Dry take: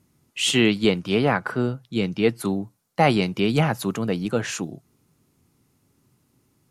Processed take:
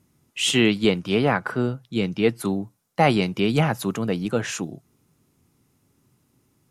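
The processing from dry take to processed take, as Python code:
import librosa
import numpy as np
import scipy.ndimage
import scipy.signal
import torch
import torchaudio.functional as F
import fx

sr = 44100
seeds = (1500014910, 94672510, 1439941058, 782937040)

y = fx.notch(x, sr, hz=4400.0, q=21.0)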